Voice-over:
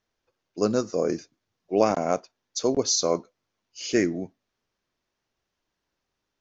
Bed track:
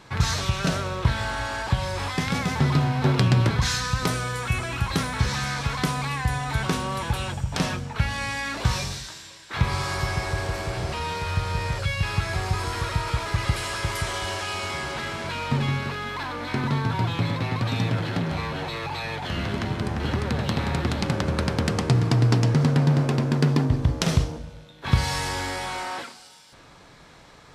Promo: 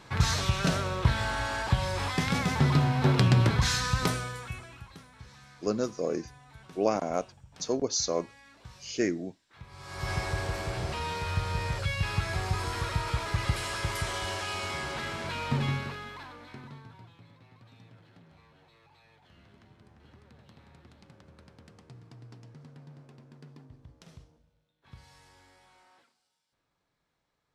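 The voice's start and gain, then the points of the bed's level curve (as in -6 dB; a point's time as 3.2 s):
5.05 s, -5.5 dB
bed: 4.05 s -2.5 dB
5.02 s -26 dB
9.68 s -26 dB
10.11 s -4.5 dB
15.71 s -4.5 dB
17.21 s -30.5 dB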